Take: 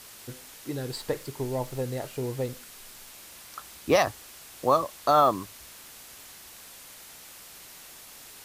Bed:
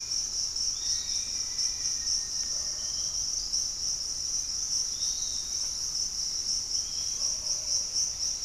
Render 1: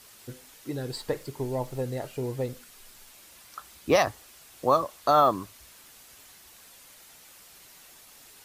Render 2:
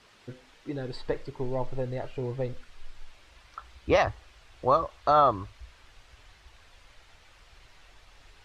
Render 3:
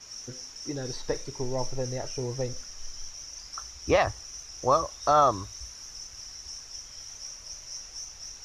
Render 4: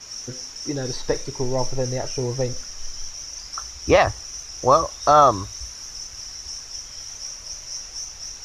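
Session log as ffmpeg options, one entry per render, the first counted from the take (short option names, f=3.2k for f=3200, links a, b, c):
-af "afftdn=nr=6:nf=-48"
-af "lowpass=3.4k,asubboost=boost=12:cutoff=60"
-filter_complex "[1:a]volume=-11.5dB[a];[0:a][a]amix=inputs=2:normalize=0"
-af "volume=7dB"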